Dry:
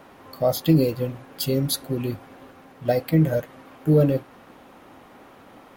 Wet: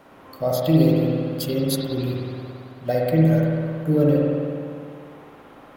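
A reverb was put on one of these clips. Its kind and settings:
spring reverb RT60 2.2 s, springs 56 ms, chirp 40 ms, DRR −3 dB
level −3 dB

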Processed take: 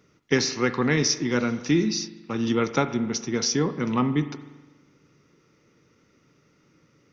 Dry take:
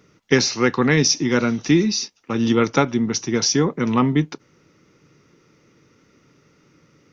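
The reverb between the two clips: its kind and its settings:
spring reverb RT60 1.2 s, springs 41 ms, chirp 55 ms, DRR 11.5 dB
level −5.5 dB

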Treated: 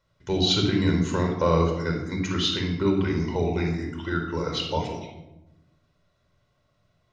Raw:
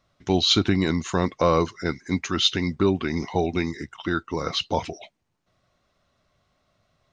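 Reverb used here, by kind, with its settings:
rectangular room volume 3,600 cubic metres, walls furnished, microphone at 4.8 metres
level −6.5 dB

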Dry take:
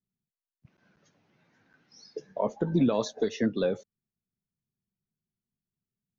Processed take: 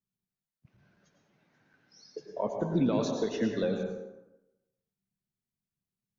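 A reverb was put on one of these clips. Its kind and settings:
dense smooth reverb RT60 0.98 s, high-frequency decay 0.6×, pre-delay 85 ms, DRR 3 dB
level −3.5 dB

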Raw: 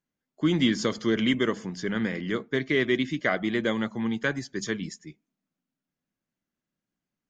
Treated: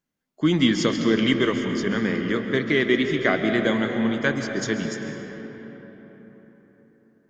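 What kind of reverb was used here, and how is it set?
comb and all-pass reverb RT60 4.5 s, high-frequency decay 0.5×, pre-delay 100 ms, DRR 5 dB
level +3.5 dB

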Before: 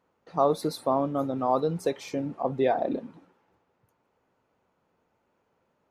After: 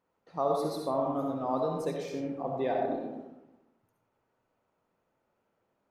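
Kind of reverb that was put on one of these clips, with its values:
comb and all-pass reverb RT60 1 s, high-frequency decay 0.45×, pre-delay 30 ms, DRR 0.5 dB
level −7.5 dB

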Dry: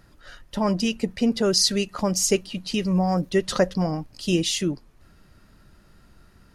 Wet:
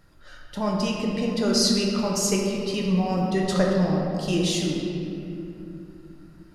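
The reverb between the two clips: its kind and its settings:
rectangular room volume 130 cubic metres, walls hard, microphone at 0.52 metres
level −4.5 dB

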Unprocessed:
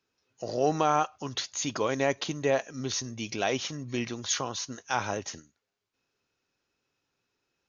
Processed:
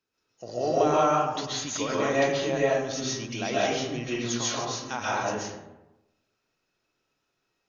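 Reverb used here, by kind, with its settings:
comb and all-pass reverb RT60 0.98 s, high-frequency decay 0.5×, pre-delay 95 ms, DRR −7.5 dB
level −5 dB

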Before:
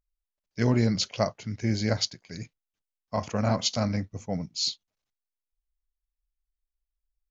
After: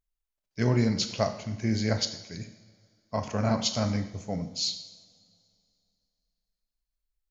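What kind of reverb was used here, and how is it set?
coupled-rooms reverb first 0.8 s, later 2.7 s, from −19 dB, DRR 7 dB
level −1.5 dB

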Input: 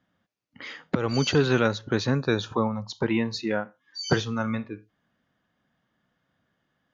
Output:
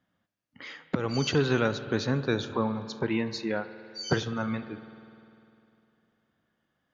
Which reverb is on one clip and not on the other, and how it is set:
spring reverb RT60 2.8 s, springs 50 ms, chirp 25 ms, DRR 12 dB
level −3.5 dB

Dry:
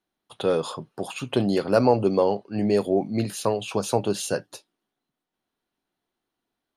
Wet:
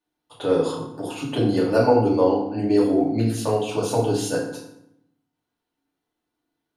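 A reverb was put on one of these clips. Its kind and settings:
feedback delay network reverb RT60 0.76 s, low-frequency decay 1.4×, high-frequency decay 0.7×, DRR −5.5 dB
level −5.5 dB

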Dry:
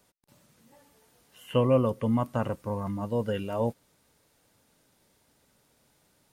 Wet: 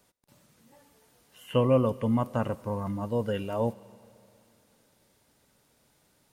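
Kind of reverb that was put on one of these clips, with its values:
four-comb reverb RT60 2.8 s, combs from 31 ms, DRR 20 dB

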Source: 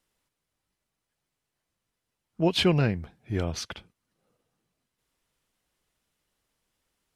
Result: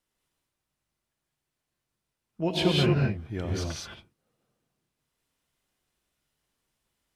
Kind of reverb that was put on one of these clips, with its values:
reverb whose tail is shaped and stops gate 240 ms rising, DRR −1.5 dB
level −5 dB

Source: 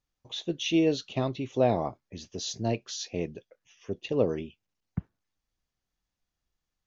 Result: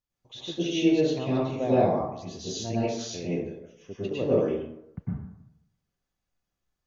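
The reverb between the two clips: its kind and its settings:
dense smooth reverb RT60 0.82 s, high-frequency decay 0.45×, pre-delay 90 ms, DRR −9 dB
level −7.5 dB

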